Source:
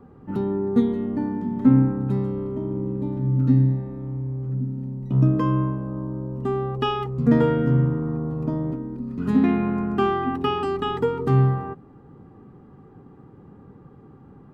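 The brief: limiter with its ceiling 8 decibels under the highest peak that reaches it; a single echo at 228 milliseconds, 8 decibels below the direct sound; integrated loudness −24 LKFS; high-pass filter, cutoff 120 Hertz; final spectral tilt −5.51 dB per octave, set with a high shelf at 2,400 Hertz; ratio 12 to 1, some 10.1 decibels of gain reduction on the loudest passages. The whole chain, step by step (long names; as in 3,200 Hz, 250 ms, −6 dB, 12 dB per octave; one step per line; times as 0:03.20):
high-pass filter 120 Hz
high-shelf EQ 2,400 Hz −3.5 dB
downward compressor 12 to 1, threshold −22 dBFS
brickwall limiter −21 dBFS
single-tap delay 228 ms −8 dB
level +5 dB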